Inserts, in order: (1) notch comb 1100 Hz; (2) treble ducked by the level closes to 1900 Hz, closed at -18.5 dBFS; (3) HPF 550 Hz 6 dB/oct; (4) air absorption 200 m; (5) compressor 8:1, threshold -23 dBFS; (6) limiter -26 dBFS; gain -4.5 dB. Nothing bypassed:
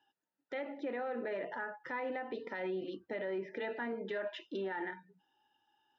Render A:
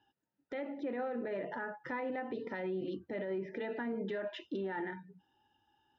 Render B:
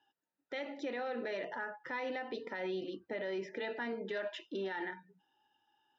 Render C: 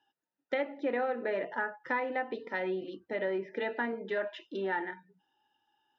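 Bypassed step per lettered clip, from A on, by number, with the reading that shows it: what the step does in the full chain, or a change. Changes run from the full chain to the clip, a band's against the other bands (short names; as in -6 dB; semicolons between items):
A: 3, 250 Hz band +4.5 dB; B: 2, 4 kHz band +4.5 dB; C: 6, mean gain reduction 3.0 dB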